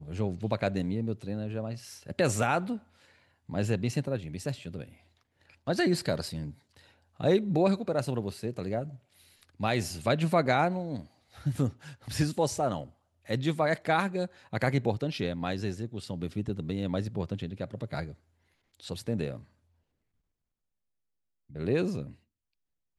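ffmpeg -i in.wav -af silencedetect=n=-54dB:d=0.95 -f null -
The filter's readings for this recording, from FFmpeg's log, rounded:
silence_start: 19.48
silence_end: 21.49 | silence_duration: 2.01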